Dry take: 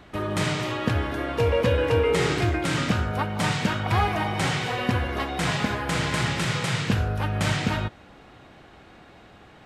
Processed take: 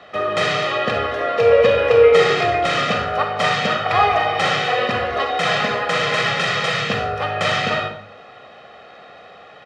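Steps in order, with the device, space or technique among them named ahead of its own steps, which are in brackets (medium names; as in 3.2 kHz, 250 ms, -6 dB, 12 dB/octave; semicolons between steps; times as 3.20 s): high-pass 90 Hz; three-band isolator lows -18 dB, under 250 Hz, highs -22 dB, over 5.5 kHz; microphone above a desk (comb 1.6 ms, depth 76%; reverberation RT60 0.55 s, pre-delay 38 ms, DRR 5 dB); trim +6 dB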